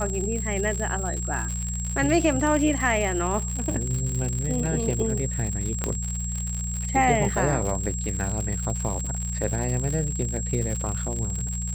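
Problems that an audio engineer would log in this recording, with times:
crackle 110/s -28 dBFS
hum 60 Hz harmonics 3 -30 dBFS
tone 7600 Hz -32 dBFS
5.84 pop -11 dBFS

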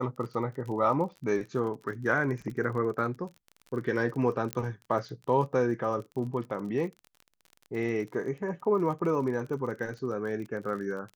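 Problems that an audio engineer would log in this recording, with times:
crackle 38/s -38 dBFS
4.53 pop -15 dBFS

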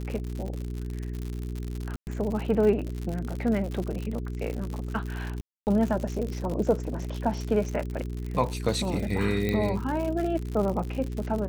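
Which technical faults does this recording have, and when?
crackle 100/s -31 dBFS
hum 60 Hz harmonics 7 -33 dBFS
1.96–2.07 gap 0.109 s
5.41–5.67 gap 0.259 s
9.49 pop -15 dBFS

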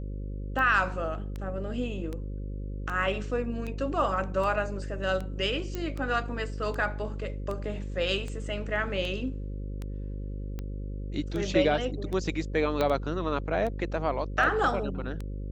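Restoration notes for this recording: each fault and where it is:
buzz 50 Hz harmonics 11 -35 dBFS
tick 78 rpm -23 dBFS
5.75 pop -19 dBFS
12.81 pop -14 dBFS

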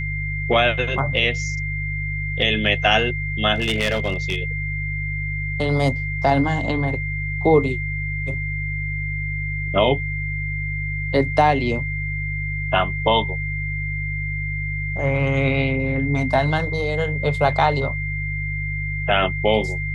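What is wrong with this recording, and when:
hum 50 Hz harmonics 3 -27 dBFS
tone 2100 Hz -27 dBFS
3.54–4.38 clipped -16 dBFS

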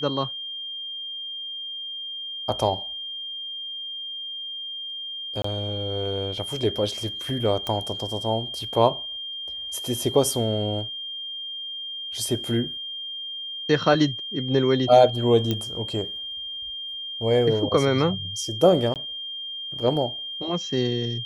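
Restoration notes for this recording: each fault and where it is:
tone 3200 Hz -31 dBFS
5.42–5.44 gap 24 ms
7.67 pop -14 dBFS
15.51 pop -11 dBFS
18.94–18.96 gap 18 ms

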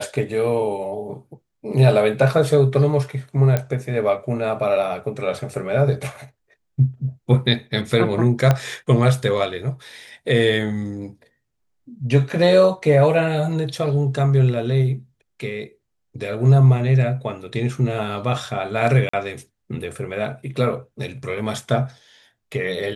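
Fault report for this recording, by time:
3.57 pop -8 dBFS
8.51 pop -4 dBFS
19.09–19.13 gap 44 ms

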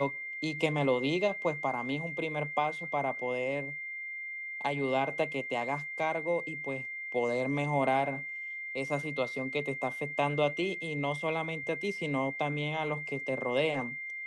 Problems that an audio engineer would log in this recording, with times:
tone 2100 Hz -37 dBFS

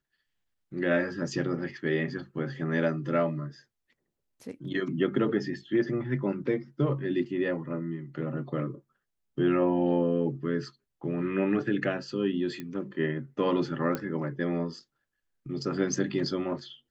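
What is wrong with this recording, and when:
12.6 pop -23 dBFS
13.95 pop -17 dBFS

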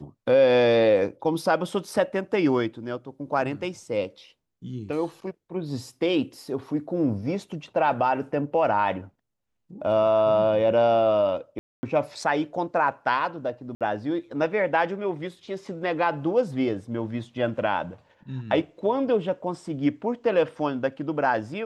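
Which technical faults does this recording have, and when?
11.59–11.83 gap 0.24 s
13.75–13.81 gap 57 ms

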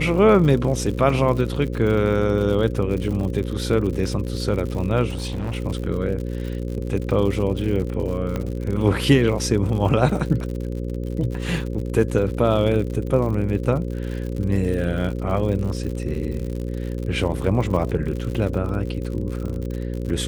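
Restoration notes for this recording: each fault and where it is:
buzz 60 Hz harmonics 9 -27 dBFS
crackle 78/s -29 dBFS
5.1–5.55 clipped -22.5 dBFS
8.36 pop -13 dBFS

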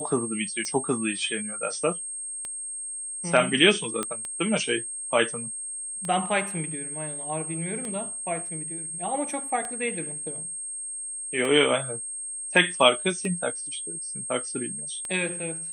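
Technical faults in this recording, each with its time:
tick 33 1/3 rpm -19 dBFS
tone 8500 Hz -32 dBFS
4.03 pop -13 dBFS

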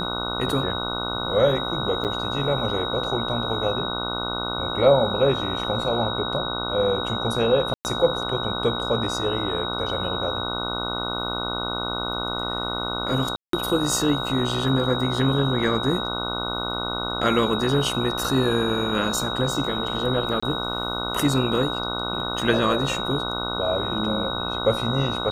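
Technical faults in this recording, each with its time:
buzz 60 Hz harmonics 25 -30 dBFS
tone 3800 Hz -29 dBFS
2.04–2.05 gap 8.2 ms
7.74–7.85 gap 0.109 s
13.36–13.53 gap 0.173 s
20.4–20.43 gap 25 ms

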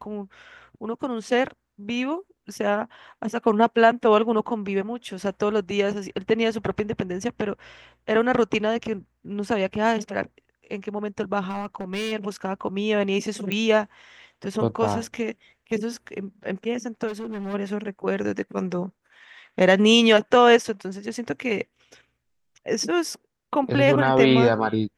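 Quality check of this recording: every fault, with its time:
11.47–12.13 clipped -24.5 dBFS
13.52 pop -13 dBFS
17.07–17.55 clipped -28.5 dBFS

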